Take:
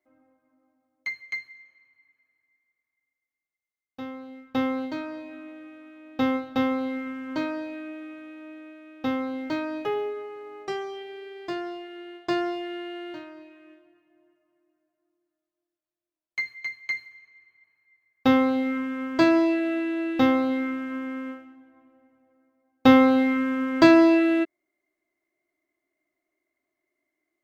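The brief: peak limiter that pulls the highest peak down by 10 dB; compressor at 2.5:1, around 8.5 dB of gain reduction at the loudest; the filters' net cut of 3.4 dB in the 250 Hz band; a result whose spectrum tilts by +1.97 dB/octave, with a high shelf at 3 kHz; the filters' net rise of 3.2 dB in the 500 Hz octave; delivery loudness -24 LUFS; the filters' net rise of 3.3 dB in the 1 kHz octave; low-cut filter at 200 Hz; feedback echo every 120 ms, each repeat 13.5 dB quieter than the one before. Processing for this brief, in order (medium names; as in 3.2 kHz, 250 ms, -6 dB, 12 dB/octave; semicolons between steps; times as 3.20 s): high-pass 200 Hz; peaking EQ 250 Hz -5.5 dB; peaking EQ 500 Hz +5 dB; peaking EQ 1 kHz +4 dB; treble shelf 3 kHz -7.5 dB; compression 2.5:1, threshold -24 dBFS; peak limiter -20 dBFS; feedback delay 120 ms, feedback 21%, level -13.5 dB; trim +7 dB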